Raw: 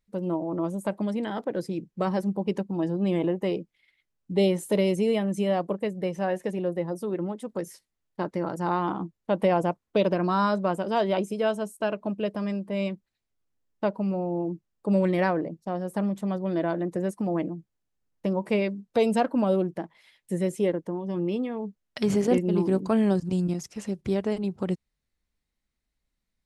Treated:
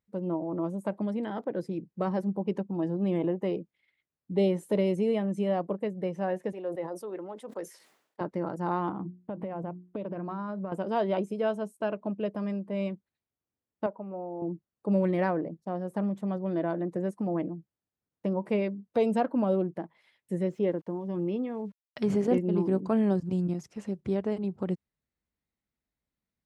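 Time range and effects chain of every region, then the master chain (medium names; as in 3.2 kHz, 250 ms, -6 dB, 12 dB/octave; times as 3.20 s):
6.52–8.21 s: high-pass 460 Hz + decay stretcher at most 85 dB/s
8.89–10.72 s: tone controls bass +6 dB, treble -15 dB + hum notches 60/120/180/240/300/360 Hz + compression 16:1, threshold -28 dBFS
13.86–14.42 s: band-pass filter 880 Hz, Q 0.81 + distance through air 300 m
20.43–22.00 s: low-pass 5.6 kHz 24 dB/octave + small samples zeroed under -54 dBFS
whole clip: high-pass 75 Hz; treble shelf 2.7 kHz -11 dB; trim -2.5 dB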